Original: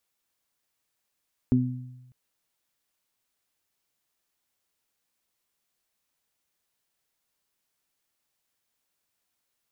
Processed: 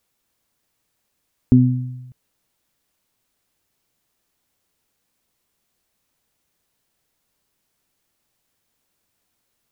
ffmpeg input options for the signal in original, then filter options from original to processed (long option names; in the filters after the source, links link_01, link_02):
-f lavfi -i "aevalsrc='0.0841*pow(10,-3*t/1.16)*sin(2*PI*126*t)+0.15*pow(10,-3*t/0.63)*sin(2*PI*252*t)+0.0266*pow(10,-3*t/0.21)*sin(2*PI*378*t)':duration=0.6:sample_rate=44100"
-filter_complex "[0:a]asplit=2[link_01][link_02];[link_02]alimiter=limit=-20.5dB:level=0:latency=1:release=108,volume=0dB[link_03];[link_01][link_03]amix=inputs=2:normalize=0,lowshelf=frequency=490:gain=8"